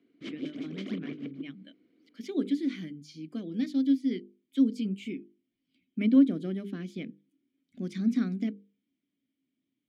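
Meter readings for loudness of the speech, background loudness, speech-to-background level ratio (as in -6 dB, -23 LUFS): -30.0 LUFS, -41.0 LUFS, 11.0 dB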